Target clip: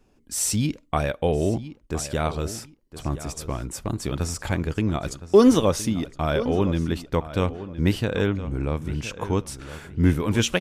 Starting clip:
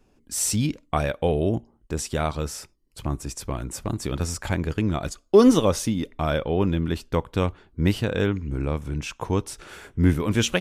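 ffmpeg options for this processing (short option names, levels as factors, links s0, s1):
-filter_complex "[0:a]asplit=2[s0][s1];[s1]adelay=1015,lowpass=f=3700:p=1,volume=0.211,asplit=2[s2][s3];[s3]adelay=1015,lowpass=f=3700:p=1,volume=0.23,asplit=2[s4][s5];[s5]adelay=1015,lowpass=f=3700:p=1,volume=0.23[s6];[s0][s2][s4][s6]amix=inputs=4:normalize=0"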